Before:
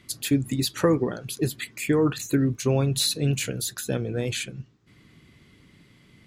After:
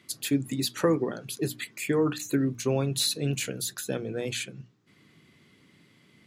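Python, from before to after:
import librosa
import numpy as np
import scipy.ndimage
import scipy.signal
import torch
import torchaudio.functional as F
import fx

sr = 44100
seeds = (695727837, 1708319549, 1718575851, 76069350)

y = scipy.signal.sosfilt(scipy.signal.butter(2, 140.0, 'highpass', fs=sr, output='sos'), x)
y = fx.hum_notches(y, sr, base_hz=60, count=5)
y = y * librosa.db_to_amplitude(-2.5)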